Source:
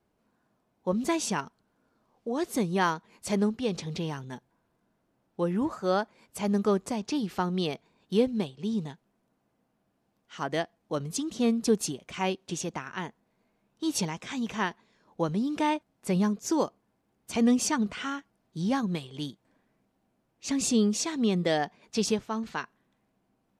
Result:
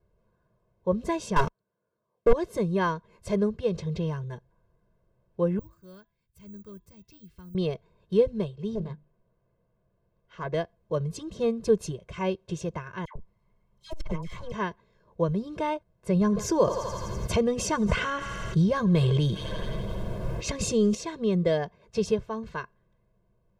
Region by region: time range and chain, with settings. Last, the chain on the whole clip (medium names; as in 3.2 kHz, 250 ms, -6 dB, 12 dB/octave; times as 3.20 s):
1.36–2.33 s: high-pass 170 Hz + waveshaping leveller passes 5
5.59–7.55 s: amplifier tone stack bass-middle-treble 6-0-2 + de-hum 334 Hz, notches 12 + careless resampling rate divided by 2×, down none, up zero stuff
8.75–10.54 s: distance through air 110 m + hum notches 50/100/150/200/250/300 Hz + loudspeaker Doppler distortion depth 0.63 ms
13.05–14.52 s: comb filter that takes the minimum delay 0.96 ms + phase dispersion lows, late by 103 ms, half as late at 1.2 kHz + transformer saturation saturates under 500 Hz
16.21–20.95 s: thinning echo 84 ms, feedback 71%, high-pass 700 Hz, level -23 dB + level flattener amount 70%
whole clip: tilt EQ -3 dB/octave; comb 1.9 ms, depth 95%; trim -4 dB